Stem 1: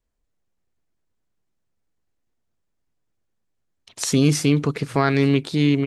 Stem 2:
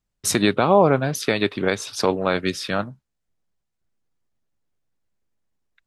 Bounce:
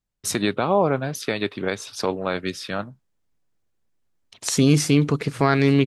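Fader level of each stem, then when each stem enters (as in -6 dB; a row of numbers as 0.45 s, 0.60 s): +0.5 dB, -4.0 dB; 0.45 s, 0.00 s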